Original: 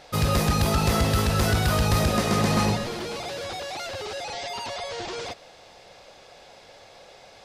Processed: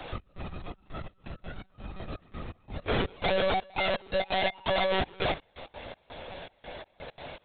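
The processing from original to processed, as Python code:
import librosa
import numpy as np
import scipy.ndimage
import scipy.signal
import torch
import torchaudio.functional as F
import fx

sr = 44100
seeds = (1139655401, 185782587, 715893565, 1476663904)

y = fx.octave_divider(x, sr, octaves=2, level_db=3.0)
y = fx.peak_eq(y, sr, hz=210.0, db=-5.0, octaves=0.47)
y = fx.over_compress(y, sr, threshold_db=-32.0, ratio=-1.0)
y = fx.step_gate(y, sr, bpm=167, pattern='xx..xxxx..xx..x.', floor_db=-24.0, edge_ms=4.5)
y = fx.lpc_monotone(y, sr, seeds[0], pitch_hz=190.0, order=16)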